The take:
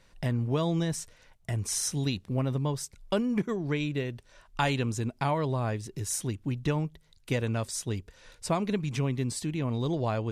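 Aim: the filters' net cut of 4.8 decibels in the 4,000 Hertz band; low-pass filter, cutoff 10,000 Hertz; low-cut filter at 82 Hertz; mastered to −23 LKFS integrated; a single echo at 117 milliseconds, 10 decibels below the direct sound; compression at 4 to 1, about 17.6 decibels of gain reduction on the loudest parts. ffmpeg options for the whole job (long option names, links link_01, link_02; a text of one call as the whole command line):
ffmpeg -i in.wav -af "highpass=82,lowpass=10000,equalizer=frequency=4000:width_type=o:gain=-6.5,acompressor=threshold=-46dB:ratio=4,aecho=1:1:117:0.316,volume=23.5dB" out.wav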